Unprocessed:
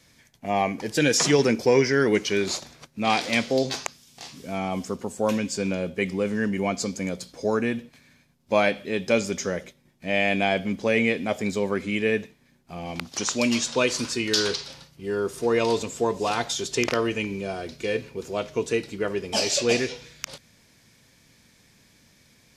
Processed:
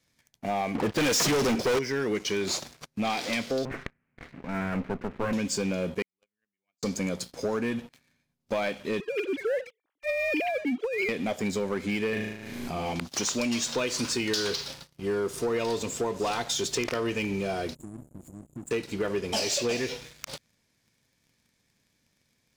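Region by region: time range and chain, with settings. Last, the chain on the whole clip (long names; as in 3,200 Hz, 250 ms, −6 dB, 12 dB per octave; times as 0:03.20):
0:00.75–0:01.79: low-pass that shuts in the quiet parts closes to 1,300 Hz, open at −14.5 dBFS + leveller curve on the samples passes 5 + expander for the loud parts, over −26 dBFS
0:03.65–0:05.33: lower of the sound and its delayed copy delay 0.56 ms + Butterworth low-pass 2,700 Hz 96 dB per octave
0:06.02–0:06.83: noise gate −19 dBFS, range −46 dB + tilt shelving filter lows −8 dB, about 1,100 Hz
0:09.00–0:11.09: three sine waves on the formant tracks + compressor whose output falls as the input rises −28 dBFS
0:12.09–0:12.93: flutter between parallel walls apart 6.4 metres, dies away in 0.6 s + background raised ahead of every attack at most 28 dB per second
0:17.75–0:18.71: downward compressor 1.5 to 1, threshold −44 dBFS + linear-phase brick-wall band-stop 350–6,800 Hz
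whole clip: downward compressor 6 to 1, threshold −26 dBFS; leveller curve on the samples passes 3; level −8.5 dB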